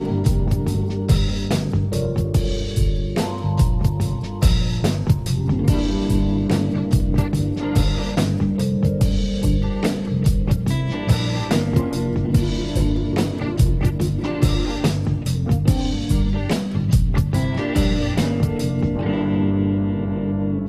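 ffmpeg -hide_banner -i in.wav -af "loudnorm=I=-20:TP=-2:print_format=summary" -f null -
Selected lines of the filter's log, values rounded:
Input Integrated:    -20.7 LUFS
Input True Peak:      -5.7 dBTP
Input LRA:             0.9 LU
Input Threshold:     -30.7 LUFS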